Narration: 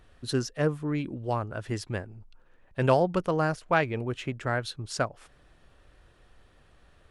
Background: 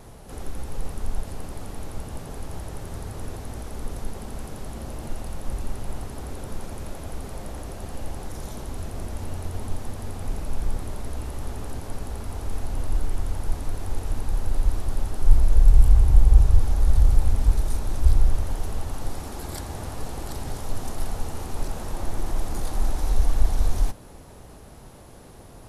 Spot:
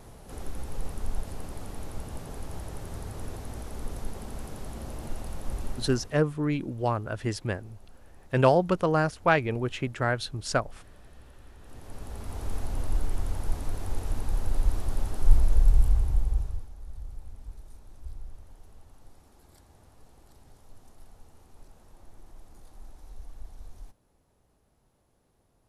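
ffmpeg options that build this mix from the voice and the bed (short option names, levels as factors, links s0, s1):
-filter_complex "[0:a]adelay=5550,volume=1.26[s0];[1:a]volume=5.31,afade=t=out:st=5.67:d=0.56:silence=0.133352,afade=t=in:st=11.59:d=0.87:silence=0.125893,afade=t=out:st=15.31:d=1.38:silence=0.0944061[s1];[s0][s1]amix=inputs=2:normalize=0"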